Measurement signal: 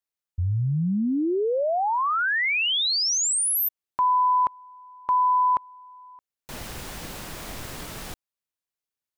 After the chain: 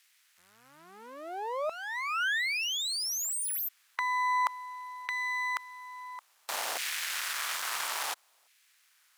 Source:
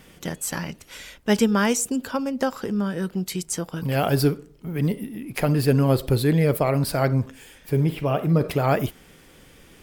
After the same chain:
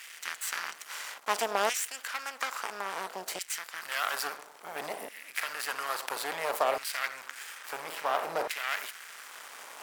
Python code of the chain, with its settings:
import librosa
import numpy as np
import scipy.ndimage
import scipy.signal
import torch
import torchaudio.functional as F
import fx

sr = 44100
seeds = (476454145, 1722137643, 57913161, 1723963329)

y = fx.bin_compress(x, sr, power=0.6)
y = np.maximum(y, 0.0)
y = fx.filter_lfo_highpass(y, sr, shape='saw_down', hz=0.59, low_hz=670.0, high_hz=2100.0, q=1.6)
y = y * 10.0 ** (-5.0 / 20.0)